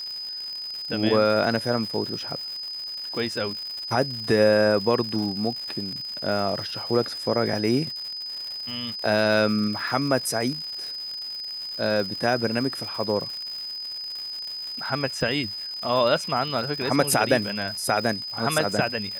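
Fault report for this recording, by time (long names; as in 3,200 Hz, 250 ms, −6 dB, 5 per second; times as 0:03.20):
surface crackle 210 per second −32 dBFS
whistle 5,000 Hz −31 dBFS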